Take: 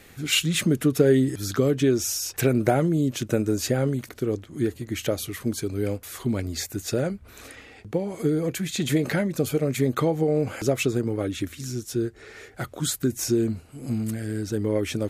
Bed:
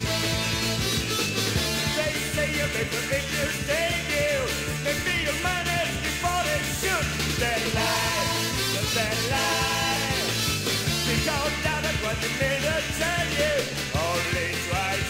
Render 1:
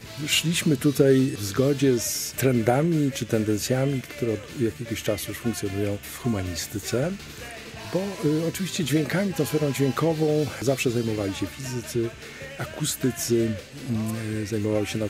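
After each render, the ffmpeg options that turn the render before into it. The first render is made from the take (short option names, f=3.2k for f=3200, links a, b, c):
-filter_complex "[1:a]volume=-14.5dB[a];[0:a][a]amix=inputs=2:normalize=0"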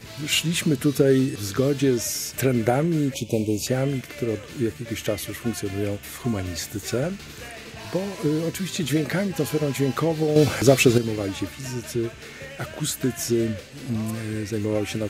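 -filter_complex "[0:a]asettb=1/sr,asplit=3[a][b][c];[a]atrim=end=3.144[d];[b]atrim=start=3.14:end=3.67,asetpts=PTS-STARTPTS,afade=t=in:d=0.004:c=qsin,afade=t=out:st=0.526:d=0.004:c=qsin,asuperstop=centerf=1500:order=12:qfactor=1.2[e];[c]atrim=start=3.666[f];[d][e]acrossfade=d=0.004:c1=hsin:c2=qsin[g];[g][f]acrossfade=d=0.004:c1=qsin:c2=hsin,asplit=3[h][i][j];[h]atrim=end=10.362[k];[i]atrim=start=10.358:end=10.982,asetpts=PTS-STARTPTS,volume=7.5dB[l];[j]atrim=start=10.978[m];[k][l]acrossfade=d=0.004:c1=hsin:c2=hsin[n];[n][m]acrossfade=d=0.004:c1=hsin:c2=hsin"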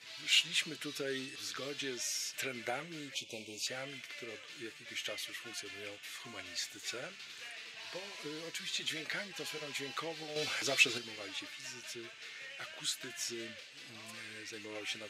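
-af "bandpass=f=3.2k:t=q:w=1:csg=0,flanger=delay=6.1:depth=2:regen=-46:speed=1.3:shape=sinusoidal"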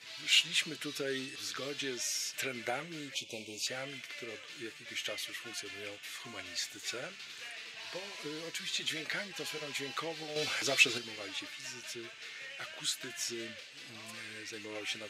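-af "volume=2dB"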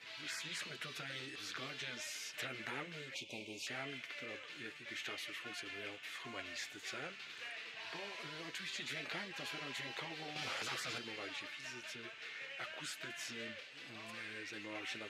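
-af "afftfilt=real='re*lt(hypot(re,im),0.0447)':imag='im*lt(hypot(re,im),0.0447)':win_size=1024:overlap=0.75,bass=f=250:g=-3,treble=f=4k:g=-11"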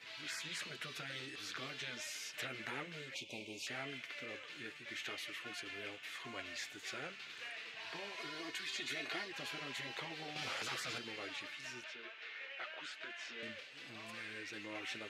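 -filter_complex "[0:a]asettb=1/sr,asplit=3[a][b][c];[a]atrim=end=8.174[d];[b]atrim=start=8.17:end=9.32,asetpts=PTS-STARTPTS,afade=t=in:d=0.004:c=qsin,afade=t=out:st=1.146:d=0.004:c=qsin,aecho=1:1:2.8:0.68,atrim=end_sample=50715[e];[c]atrim=start=9.316[f];[d][e]acrossfade=d=0.004:c1=hsin:c2=qsin[g];[g][f]acrossfade=d=0.004:c1=qsin:c2=hsin,asettb=1/sr,asplit=3[h][i][j];[h]atrim=end=11.844[k];[i]atrim=start=11.84:end=13.43,asetpts=PTS-STARTPTS,afade=t=in:d=0.004:c=qsin,afade=t=out:st=1.586:d=0.004:c=qsin,highpass=370,lowpass=4k[l];[j]atrim=start=13.426[m];[k][l]acrossfade=d=0.004:c1=hsin:c2=qsin[n];[n][m]acrossfade=d=0.004:c1=qsin:c2=hsin"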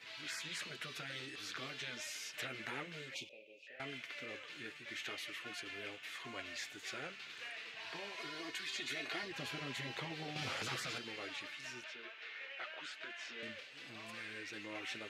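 -filter_complex "[0:a]asettb=1/sr,asplit=3[a][b][c];[a]atrim=end=3.294[d];[b]atrim=start=3.29:end=3.8,asetpts=PTS-STARTPTS,afade=t=in:d=0.004:c=qsin,afade=t=out:st=0.506:d=0.004:c=qsin,asplit=3[e][f][g];[e]bandpass=f=530:t=q:w=8,volume=0dB[h];[f]bandpass=f=1.84k:t=q:w=8,volume=-6dB[i];[g]bandpass=f=2.48k:t=q:w=8,volume=-9dB[j];[h][i][j]amix=inputs=3:normalize=0[k];[c]atrim=start=3.796[l];[d][k]acrossfade=d=0.004:c1=hsin:c2=qsin[m];[m][l]acrossfade=d=0.004:c1=qsin:c2=hsin,asettb=1/sr,asplit=3[n][o][p];[n]atrim=end=9.234[q];[o]atrim=start=9.23:end=10.87,asetpts=PTS-STARTPTS,afade=t=in:d=0.004:c=qsin,afade=t=out:st=1.636:d=0.004:c=qsin,lowshelf=f=220:g=11[r];[p]atrim=start=10.866[s];[q][r]acrossfade=d=0.004:c1=hsin:c2=qsin[t];[t][s]acrossfade=d=0.004:c1=qsin:c2=hsin"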